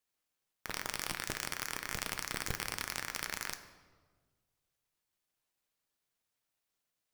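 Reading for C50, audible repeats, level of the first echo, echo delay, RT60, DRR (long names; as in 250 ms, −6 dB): 11.0 dB, no echo audible, no echo audible, no echo audible, 1.5 s, 7.5 dB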